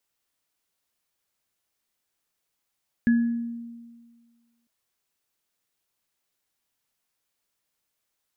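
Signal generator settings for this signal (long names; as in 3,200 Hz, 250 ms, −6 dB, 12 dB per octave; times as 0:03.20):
inharmonic partials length 1.60 s, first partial 234 Hz, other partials 1,690 Hz, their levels −12.5 dB, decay 1.66 s, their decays 0.53 s, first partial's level −15 dB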